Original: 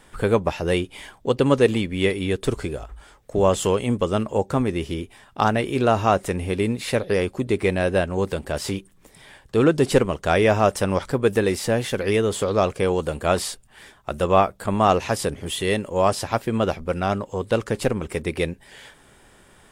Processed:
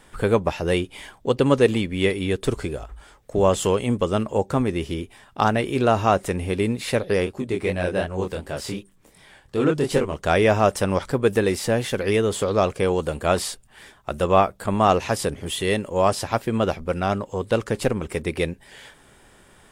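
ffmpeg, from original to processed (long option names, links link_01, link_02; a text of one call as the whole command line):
ffmpeg -i in.wav -filter_complex "[0:a]asplit=3[link_01][link_02][link_03];[link_01]afade=type=out:start_time=7.25:duration=0.02[link_04];[link_02]flanger=delay=20:depth=7.1:speed=2.7,afade=type=in:start_time=7.25:duration=0.02,afade=type=out:start_time=10.14:duration=0.02[link_05];[link_03]afade=type=in:start_time=10.14:duration=0.02[link_06];[link_04][link_05][link_06]amix=inputs=3:normalize=0" out.wav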